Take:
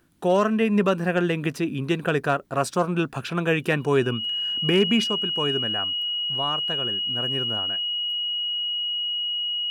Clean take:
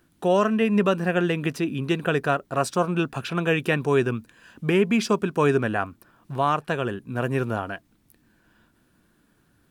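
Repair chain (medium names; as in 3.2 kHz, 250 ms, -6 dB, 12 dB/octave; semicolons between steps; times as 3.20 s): clip repair -10.5 dBFS; band-stop 2.9 kHz, Q 30; gain correction +7 dB, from 5.04 s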